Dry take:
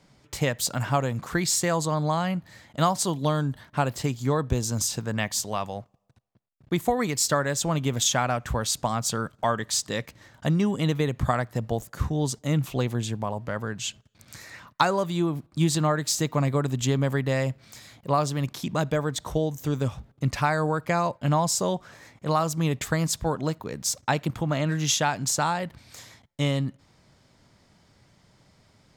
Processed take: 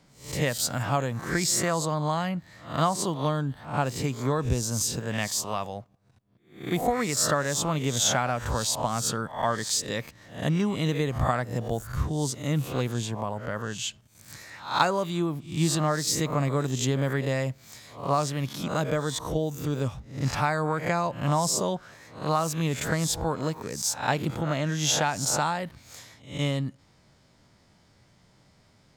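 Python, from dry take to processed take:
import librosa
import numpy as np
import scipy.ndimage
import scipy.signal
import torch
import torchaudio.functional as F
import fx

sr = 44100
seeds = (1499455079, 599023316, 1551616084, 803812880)

y = fx.spec_swells(x, sr, rise_s=0.43)
y = fx.high_shelf(y, sr, hz=4400.0, db=-5.0, at=(2.29, 3.86))
y = y * librosa.db_to_amplitude(-2.5)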